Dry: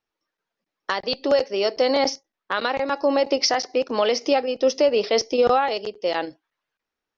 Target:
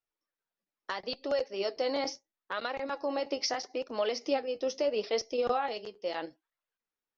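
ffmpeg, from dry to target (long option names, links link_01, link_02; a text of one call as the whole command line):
ffmpeg -i in.wav -af "flanger=delay=1.4:depth=9:regen=58:speed=0.76:shape=sinusoidal,volume=-7dB" out.wav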